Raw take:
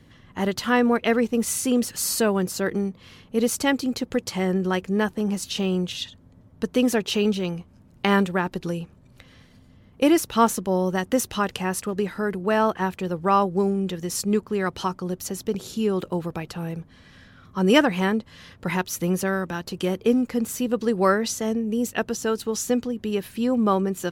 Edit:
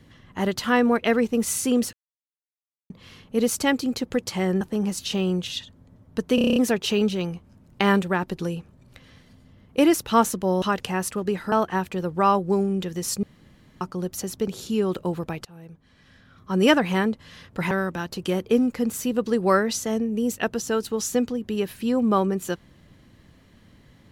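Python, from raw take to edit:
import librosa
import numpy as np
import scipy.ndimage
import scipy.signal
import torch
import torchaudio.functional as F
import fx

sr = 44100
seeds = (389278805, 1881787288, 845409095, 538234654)

y = fx.edit(x, sr, fx.silence(start_s=1.93, length_s=0.97),
    fx.cut(start_s=4.61, length_s=0.45),
    fx.stutter(start_s=6.8, slice_s=0.03, count=8),
    fx.cut(start_s=10.86, length_s=0.47),
    fx.cut(start_s=12.23, length_s=0.36),
    fx.room_tone_fill(start_s=14.3, length_s=0.58),
    fx.fade_in_from(start_s=16.52, length_s=1.34, floor_db=-19.5),
    fx.cut(start_s=18.78, length_s=0.48), tone=tone)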